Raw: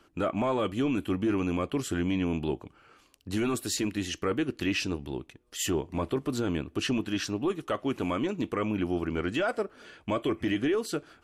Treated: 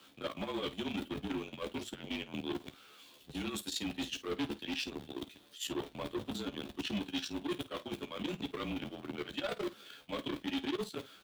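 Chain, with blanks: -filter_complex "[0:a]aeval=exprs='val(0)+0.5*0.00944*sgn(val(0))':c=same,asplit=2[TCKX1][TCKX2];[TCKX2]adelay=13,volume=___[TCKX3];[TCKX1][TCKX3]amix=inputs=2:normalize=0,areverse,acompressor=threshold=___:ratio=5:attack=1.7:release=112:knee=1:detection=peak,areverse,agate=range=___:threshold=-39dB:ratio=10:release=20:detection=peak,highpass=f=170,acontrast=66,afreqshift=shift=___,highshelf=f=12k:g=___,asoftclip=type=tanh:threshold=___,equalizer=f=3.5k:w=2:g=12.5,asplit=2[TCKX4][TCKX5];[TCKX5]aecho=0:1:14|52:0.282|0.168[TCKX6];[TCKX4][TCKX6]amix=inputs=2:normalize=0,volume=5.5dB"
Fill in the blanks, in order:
-3dB, -36dB, -31dB, -35, 6, -38.5dB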